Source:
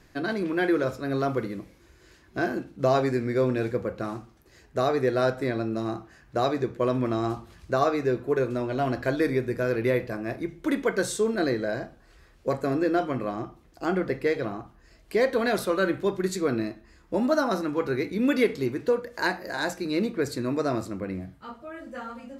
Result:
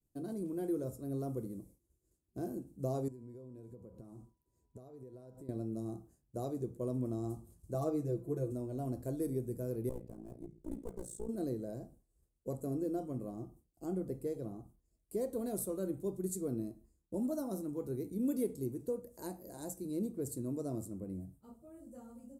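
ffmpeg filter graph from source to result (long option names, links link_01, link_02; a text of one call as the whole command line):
ffmpeg -i in.wav -filter_complex "[0:a]asettb=1/sr,asplit=3[link_01][link_02][link_03];[link_01]atrim=end=3.084[link_04];[link_02]atrim=start=3.08:end=5.49,asetpts=PTS-STARTPTS,afade=type=in:duration=0.004:curve=qsin,afade=type=out:start_time=2.406:duration=0.004:curve=qsin,highshelf=frequency=5400:gain=-7.5,acompressor=threshold=-36dB:ratio=12:attack=3.2:release=140:knee=1:detection=peak,aeval=exprs='val(0)+0.00178*sin(2*PI*980*n/s)':channel_layout=same[link_05];[link_03]atrim=start=5.486[link_06];[link_04][link_05]acrossfade=duration=0.004:curve1=hsin:curve2=qsin[link_07];[link_07][link_06]acrossfade=duration=0.004:curve1=qsin:curve2=hsin,asettb=1/sr,asplit=3[link_08][link_09][link_10];[link_08]atrim=end=7.744[link_11];[link_09]atrim=start=7.74:end=8.52,asetpts=PTS-STARTPTS,afade=type=in:duration=0.004:curve=qsin,afade=type=out:start_time=0.776:duration=0.004:curve=qsin,highshelf=frequency=8200:gain=-6,asoftclip=type=hard:threshold=-14dB,aecho=1:1:6.1:0.9,atrim=end_sample=34398[link_12];[link_10]atrim=start=8.516[link_13];[link_11][link_12]acrossfade=duration=0.004:curve1=hsin:curve2=qsin[link_14];[link_14][link_13]acrossfade=duration=0.004:curve1=qsin:curve2=hsin,asettb=1/sr,asplit=3[link_15][link_16][link_17];[link_15]atrim=end=9.894[link_18];[link_16]atrim=start=9.89:end=11.29,asetpts=PTS-STARTPTS,afade=type=in:duration=0.004:curve=qsin,afade=type=out:start_time=1.396:duration=0.004:curve=qsin,aemphasis=mode=reproduction:type=50kf,aeval=exprs='clip(val(0),-1,0.0237)':channel_layout=same,tremolo=f=58:d=0.857[link_19];[link_17]atrim=start=11.286[link_20];[link_18][link_19]acrossfade=duration=0.004:curve1=hsin:curve2=qsin[link_21];[link_21][link_20]acrossfade=duration=0.004:curve1=qsin:curve2=hsin,agate=range=-33dB:threshold=-45dB:ratio=3:detection=peak,firequalizer=gain_entry='entry(140,0);entry(1700,-29);entry(4800,-15);entry(8300,8)':delay=0.05:min_phase=1,volume=-7.5dB" out.wav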